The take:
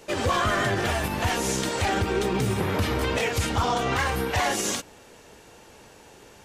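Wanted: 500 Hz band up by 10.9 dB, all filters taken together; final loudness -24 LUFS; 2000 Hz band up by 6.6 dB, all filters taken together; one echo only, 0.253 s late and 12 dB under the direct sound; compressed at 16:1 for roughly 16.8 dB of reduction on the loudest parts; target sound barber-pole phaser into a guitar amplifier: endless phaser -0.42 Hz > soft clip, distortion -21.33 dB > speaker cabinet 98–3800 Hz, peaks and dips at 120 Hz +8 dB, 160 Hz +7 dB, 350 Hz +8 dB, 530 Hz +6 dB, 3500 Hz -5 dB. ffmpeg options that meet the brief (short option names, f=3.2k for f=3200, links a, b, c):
-filter_complex "[0:a]equalizer=f=500:t=o:g=7,equalizer=f=2k:t=o:g=8,acompressor=threshold=-33dB:ratio=16,aecho=1:1:253:0.251,asplit=2[a][b];[b]afreqshift=-0.42[c];[a][c]amix=inputs=2:normalize=1,asoftclip=threshold=-30dB,highpass=98,equalizer=f=120:t=q:w=4:g=8,equalizer=f=160:t=q:w=4:g=7,equalizer=f=350:t=q:w=4:g=8,equalizer=f=530:t=q:w=4:g=6,equalizer=f=3.5k:t=q:w=4:g=-5,lowpass=f=3.8k:w=0.5412,lowpass=f=3.8k:w=1.3066,volume=14dB"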